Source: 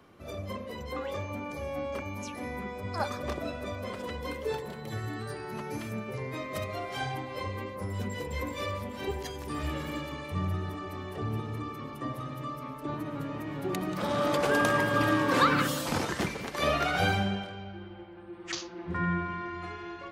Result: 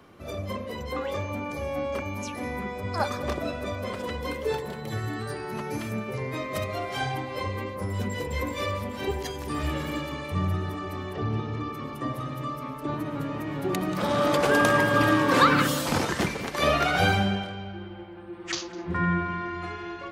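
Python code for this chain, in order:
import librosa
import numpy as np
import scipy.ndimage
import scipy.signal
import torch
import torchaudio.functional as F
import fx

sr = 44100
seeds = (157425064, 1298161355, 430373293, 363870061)

p1 = fx.lowpass(x, sr, hz=6300.0, slope=24, at=(11.12, 11.71), fade=0.02)
p2 = p1 + fx.echo_single(p1, sr, ms=204, db=-22.0, dry=0)
y = p2 * 10.0 ** (4.5 / 20.0)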